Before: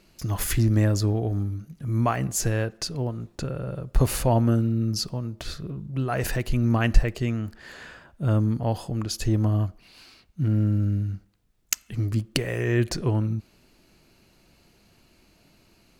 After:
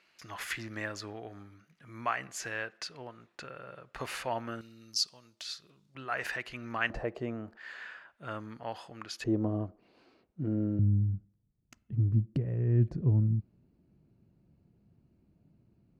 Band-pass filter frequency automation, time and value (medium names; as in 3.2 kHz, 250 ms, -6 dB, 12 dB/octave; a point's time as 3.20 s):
band-pass filter, Q 1.2
1.9 kHz
from 4.61 s 4.9 kHz
from 5.95 s 1.8 kHz
from 6.90 s 650 Hz
from 7.57 s 1.8 kHz
from 9.24 s 430 Hz
from 10.79 s 130 Hz